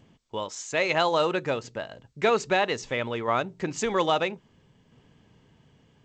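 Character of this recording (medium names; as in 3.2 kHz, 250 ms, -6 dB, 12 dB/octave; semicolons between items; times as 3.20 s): tremolo saw down 0.61 Hz, depth 35%; G.722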